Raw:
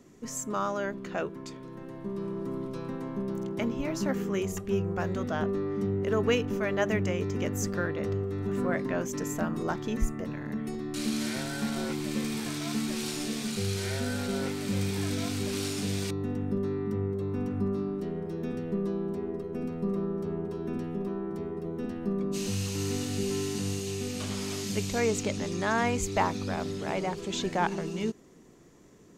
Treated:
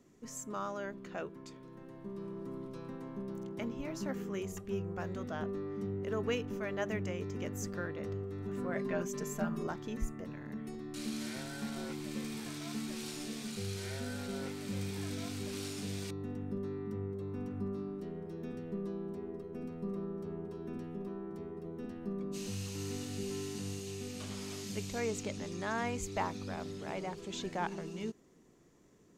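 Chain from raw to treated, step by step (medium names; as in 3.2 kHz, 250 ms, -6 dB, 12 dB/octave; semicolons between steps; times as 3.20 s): 8.75–9.67 s: comb 5 ms, depth 96%; trim -8.5 dB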